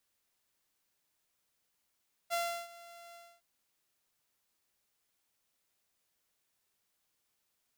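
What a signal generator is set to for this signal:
note with an ADSR envelope saw 686 Hz, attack 35 ms, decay 340 ms, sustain −20.5 dB, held 0.85 s, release 263 ms −27.5 dBFS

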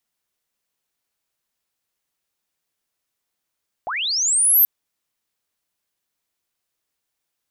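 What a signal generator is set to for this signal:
glide linear 620 Hz → 13,000 Hz −23.5 dBFS → −10 dBFS 0.78 s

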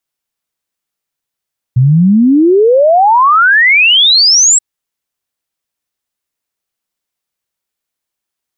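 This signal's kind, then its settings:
exponential sine sweep 120 Hz → 7,900 Hz 2.83 s −4 dBFS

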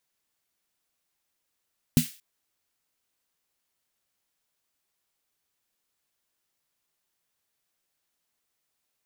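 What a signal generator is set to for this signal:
synth snare length 0.23 s, tones 160 Hz, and 240 Hz, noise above 2,000 Hz, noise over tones −11.5 dB, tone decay 0.13 s, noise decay 0.39 s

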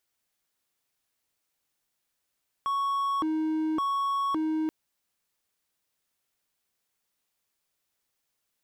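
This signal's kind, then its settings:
siren hi-lo 314–1,110 Hz 0.89 per second triangle −23 dBFS 2.03 s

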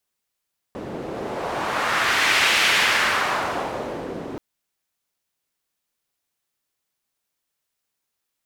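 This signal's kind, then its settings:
wind from filtered noise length 3.63 s, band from 350 Hz, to 2,400 Hz, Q 1.3, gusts 1, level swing 14 dB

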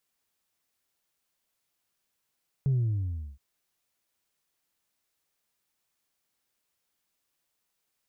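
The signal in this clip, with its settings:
bass drop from 140 Hz, over 0.72 s, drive 1 dB, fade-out 0.69 s, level −22 dB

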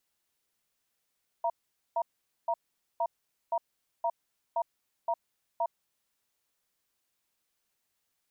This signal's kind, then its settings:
tone pair in a cadence 677 Hz, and 941 Hz, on 0.06 s, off 0.46 s, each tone −28.5 dBFS 4.22 s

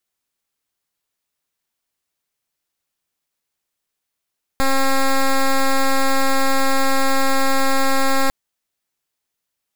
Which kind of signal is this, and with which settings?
pulse wave 269 Hz, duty 9% −15 dBFS 3.70 s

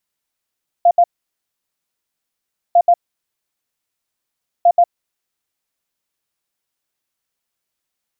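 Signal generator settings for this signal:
beeps in groups sine 695 Hz, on 0.06 s, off 0.07 s, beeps 2, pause 1.71 s, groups 3, −6.5 dBFS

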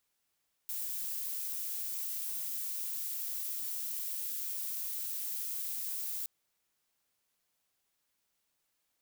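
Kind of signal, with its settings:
noise violet, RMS −37.5 dBFS 5.57 s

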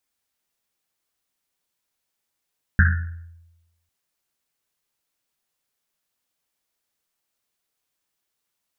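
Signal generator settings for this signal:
drum after Risset, pitch 84 Hz, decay 1.04 s, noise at 1,600 Hz, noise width 390 Hz, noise 30%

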